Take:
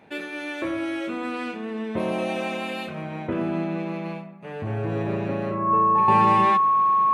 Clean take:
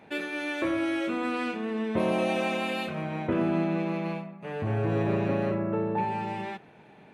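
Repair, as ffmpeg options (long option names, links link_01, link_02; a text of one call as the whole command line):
ffmpeg -i in.wav -af "bandreject=frequency=1100:width=30,asetnsamples=nb_out_samples=441:pad=0,asendcmd='6.08 volume volume -11dB',volume=0dB" out.wav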